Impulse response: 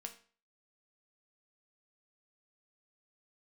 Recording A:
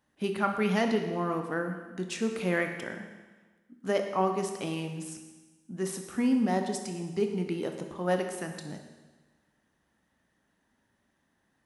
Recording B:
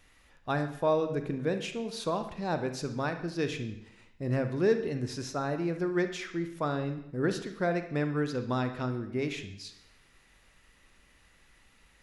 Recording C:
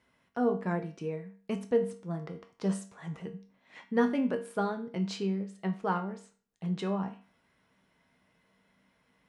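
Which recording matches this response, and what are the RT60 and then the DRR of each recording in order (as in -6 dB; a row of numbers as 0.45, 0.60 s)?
C; 1.3, 0.80, 0.40 s; 4.5, 7.5, 4.0 dB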